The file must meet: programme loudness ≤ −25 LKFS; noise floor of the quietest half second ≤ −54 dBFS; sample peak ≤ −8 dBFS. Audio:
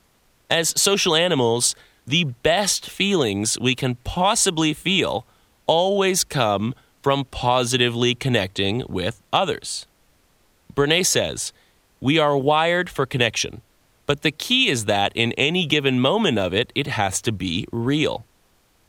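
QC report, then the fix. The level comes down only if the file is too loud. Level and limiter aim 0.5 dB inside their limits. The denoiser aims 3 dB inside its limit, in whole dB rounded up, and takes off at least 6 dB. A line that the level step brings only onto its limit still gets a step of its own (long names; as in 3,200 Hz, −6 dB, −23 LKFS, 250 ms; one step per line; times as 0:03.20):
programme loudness −20.5 LKFS: out of spec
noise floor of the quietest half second −60 dBFS: in spec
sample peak −3.5 dBFS: out of spec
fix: level −5 dB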